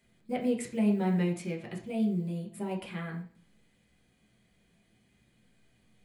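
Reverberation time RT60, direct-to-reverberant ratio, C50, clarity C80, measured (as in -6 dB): 0.50 s, -1.0 dB, 9.0 dB, 13.0 dB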